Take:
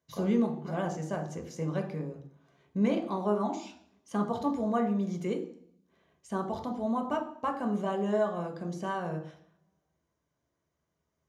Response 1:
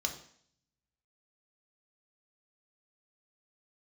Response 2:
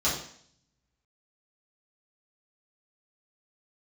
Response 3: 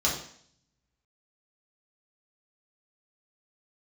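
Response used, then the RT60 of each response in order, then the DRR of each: 1; 0.60 s, 0.60 s, 0.60 s; 3.0 dB, -10.0 dB, -5.5 dB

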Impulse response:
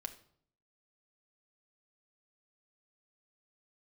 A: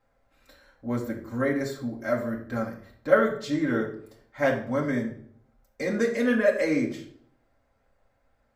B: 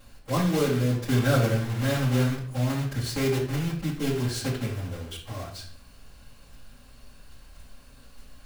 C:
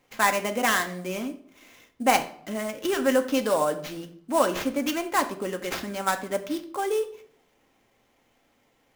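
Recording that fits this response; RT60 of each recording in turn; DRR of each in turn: C; 0.60 s, 0.60 s, 0.60 s; -3.0 dB, -8.5 dB, 5.0 dB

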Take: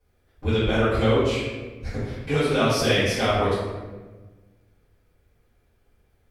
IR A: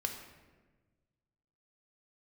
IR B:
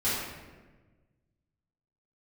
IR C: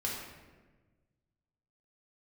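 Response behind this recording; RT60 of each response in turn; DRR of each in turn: B; 1.3 s, 1.3 s, 1.3 s; 3.5 dB, -13.0 dB, -4.0 dB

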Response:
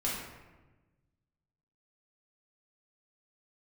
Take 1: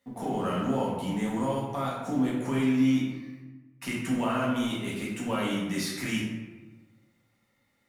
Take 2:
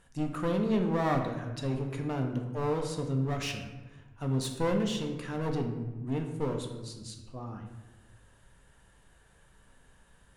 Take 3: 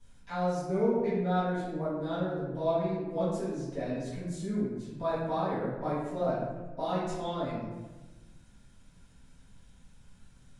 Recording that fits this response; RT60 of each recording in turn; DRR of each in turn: 1; 1.2 s, 1.2 s, 1.2 s; -6.0 dB, 3.0 dB, -14.0 dB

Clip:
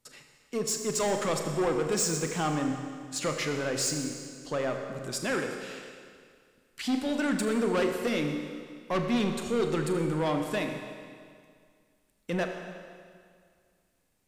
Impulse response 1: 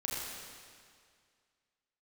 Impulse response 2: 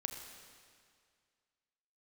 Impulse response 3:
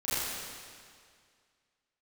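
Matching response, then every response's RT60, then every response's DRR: 2; 2.1 s, 2.1 s, 2.1 s; -5.0 dB, 4.0 dB, -14.5 dB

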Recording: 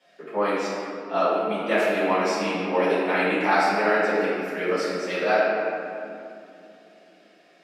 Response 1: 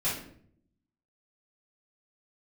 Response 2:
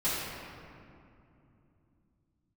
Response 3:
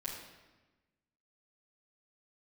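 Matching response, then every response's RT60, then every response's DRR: 2; 0.60 s, 2.7 s, 1.2 s; -10.5 dB, -14.0 dB, -8.0 dB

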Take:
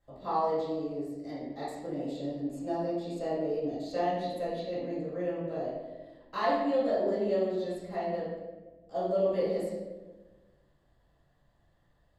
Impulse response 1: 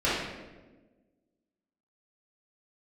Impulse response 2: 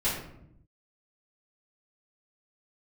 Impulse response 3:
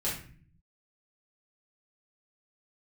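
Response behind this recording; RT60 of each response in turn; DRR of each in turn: 1; 1.3 s, 0.75 s, 0.45 s; -12.0 dB, -13.5 dB, -8.0 dB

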